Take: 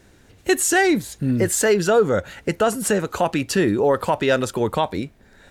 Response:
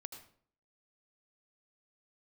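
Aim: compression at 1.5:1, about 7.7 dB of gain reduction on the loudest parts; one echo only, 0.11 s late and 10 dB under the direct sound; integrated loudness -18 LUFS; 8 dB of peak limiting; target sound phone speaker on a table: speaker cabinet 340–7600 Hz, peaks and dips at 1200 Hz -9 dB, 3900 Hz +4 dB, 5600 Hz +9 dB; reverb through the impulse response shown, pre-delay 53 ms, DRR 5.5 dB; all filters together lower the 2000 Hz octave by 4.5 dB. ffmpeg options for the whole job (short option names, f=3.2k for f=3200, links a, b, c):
-filter_complex "[0:a]equalizer=f=2k:t=o:g=-4.5,acompressor=threshold=-35dB:ratio=1.5,alimiter=limit=-23dB:level=0:latency=1,aecho=1:1:110:0.316,asplit=2[a][b];[1:a]atrim=start_sample=2205,adelay=53[c];[b][c]afir=irnorm=-1:irlink=0,volume=-1.5dB[d];[a][d]amix=inputs=2:normalize=0,highpass=f=340:w=0.5412,highpass=f=340:w=1.3066,equalizer=f=1.2k:t=q:w=4:g=-9,equalizer=f=3.9k:t=q:w=4:g=4,equalizer=f=5.6k:t=q:w=4:g=9,lowpass=f=7.6k:w=0.5412,lowpass=f=7.6k:w=1.3066,volume=14dB"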